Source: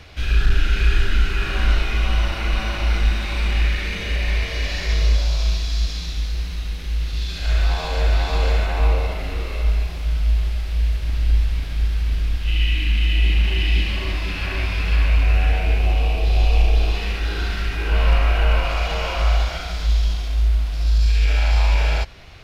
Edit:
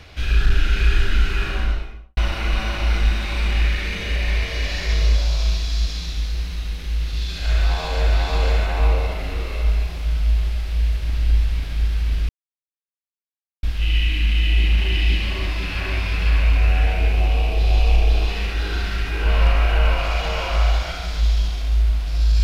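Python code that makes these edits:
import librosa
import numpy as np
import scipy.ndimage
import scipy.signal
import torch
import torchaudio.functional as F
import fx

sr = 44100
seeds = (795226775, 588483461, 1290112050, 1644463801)

y = fx.studio_fade_out(x, sr, start_s=1.37, length_s=0.8)
y = fx.edit(y, sr, fx.insert_silence(at_s=12.29, length_s=1.34), tone=tone)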